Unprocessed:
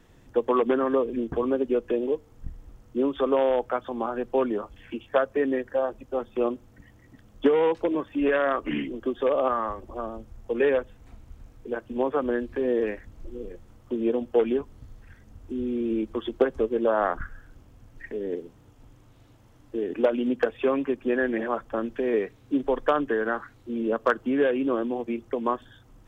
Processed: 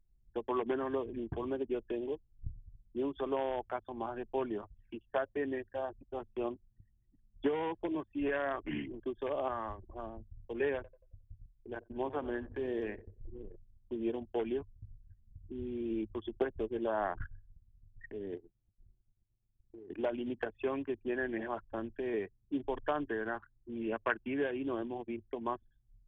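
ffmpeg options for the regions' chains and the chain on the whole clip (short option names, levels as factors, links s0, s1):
-filter_complex "[0:a]asettb=1/sr,asplit=3[s0][s1][s2];[s0]atrim=end=10.754[s3];[s1]atrim=start=10.75:end=13.32,asetpts=PTS-STARTPTS,afade=t=in:d=0.004:c=qsin,afade=t=out:st=2.566:d=0.004:c=qsin,agate=range=0.0224:threshold=0.00708:ratio=3:release=100:detection=peak,aecho=1:1:90|180|270|360|450|540:0.168|0.099|0.0584|0.0345|0.0203|0.012,atrim=end_sample=113337[s4];[s2]atrim=start=13.316[s5];[s3][s4]acrossfade=d=0.004:c1=hsin:c2=qsin[s6];[s6][s5]acrossfade=d=0.004:c1=qsin:c2=hsin,asettb=1/sr,asplit=3[s7][s8][s9];[s7]atrim=end=18.374[s10];[s8]atrim=start=18.37:end=19.9,asetpts=PTS-STARTPTS,afade=t=in:d=0.004:c=qsin,afade=t=out:st=1.526:d=0.004:c=qsin,acompressor=threshold=0.0126:ratio=4:attack=3.2:release=140:knee=1:detection=peak,acrusher=bits=7:mix=0:aa=0.5,asuperstop=centerf=970:order=4:qfactor=5.5[s11];[s9]atrim=start=19.896[s12];[s10][s11]acrossfade=d=0.004:c1=hsin:c2=qsin[s13];[s13][s12]acrossfade=d=0.004:c1=qsin:c2=hsin,asettb=1/sr,asplit=3[s14][s15][s16];[s14]atrim=end=23.814[s17];[s15]atrim=start=23.81:end=24.34,asetpts=PTS-STARTPTS,afade=t=in:d=0.004:c=qsin,afade=t=out:st=0.526:d=0.004:c=qsin,lowpass=f=2500:t=q:w=4,bandreject=f=1300:w=17[s18];[s16]atrim=start=24.336[s19];[s17][s18]acrossfade=d=0.004:c1=hsin:c2=qsin[s20];[s20][s19]acrossfade=d=0.004:c1=qsin:c2=hsin,anlmdn=1.58,acrossover=split=2600[s21][s22];[s22]acompressor=threshold=0.00251:ratio=4:attack=1:release=60[s23];[s21][s23]amix=inputs=2:normalize=0,equalizer=f=100:t=o:w=0.33:g=12,equalizer=f=250:t=o:w=0.33:g=-7,equalizer=f=500:t=o:w=0.33:g=-11,equalizer=f=1250:t=o:w=0.33:g=-9,equalizer=f=3150:t=o:w=0.33:g=3,volume=0.473"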